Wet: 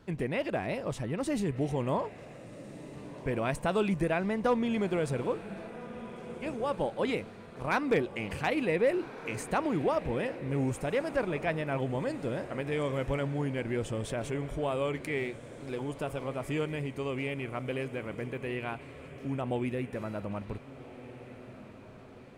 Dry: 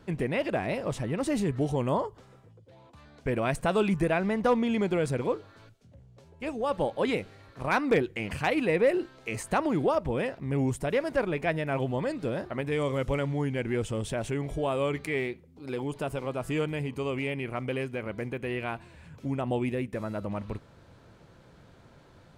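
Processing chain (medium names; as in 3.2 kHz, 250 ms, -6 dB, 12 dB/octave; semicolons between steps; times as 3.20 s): echo that smears into a reverb 1503 ms, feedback 51%, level -14 dB; trim -3 dB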